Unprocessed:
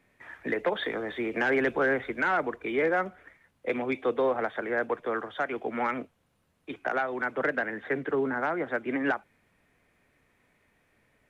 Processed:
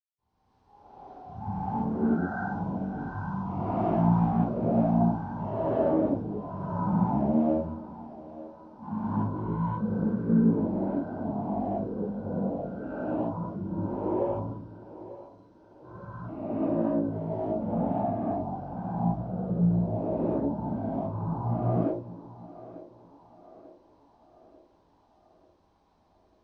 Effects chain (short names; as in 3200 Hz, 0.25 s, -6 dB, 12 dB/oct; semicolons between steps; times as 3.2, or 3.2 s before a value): split-band echo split 690 Hz, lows 0.136 s, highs 0.381 s, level -15.5 dB; reverb, pre-delay 78 ms; speed mistake 78 rpm record played at 33 rpm